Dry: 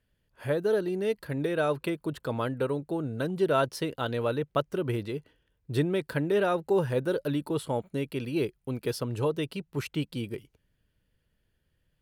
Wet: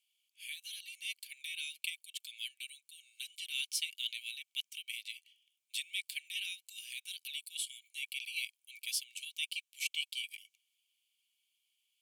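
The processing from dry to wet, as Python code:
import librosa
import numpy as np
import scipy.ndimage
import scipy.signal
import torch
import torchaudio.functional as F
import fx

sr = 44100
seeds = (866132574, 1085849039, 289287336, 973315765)

y = scipy.signal.sosfilt(scipy.signal.cheby1(6, 6, 2200.0, 'highpass', fs=sr, output='sos'), x)
y = F.gain(torch.from_numpy(y), 8.0).numpy()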